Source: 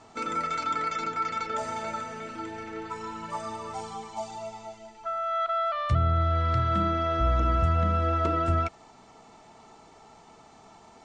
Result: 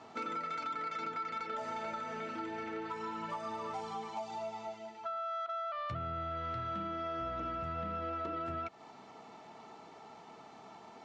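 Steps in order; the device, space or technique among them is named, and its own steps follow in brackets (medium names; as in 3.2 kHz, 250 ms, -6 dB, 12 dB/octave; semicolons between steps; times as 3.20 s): AM radio (band-pass 150–4500 Hz; compression 6:1, threshold -35 dBFS, peak gain reduction 11.5 dB; saturation -29.5 dBFS, distortion -23 dB)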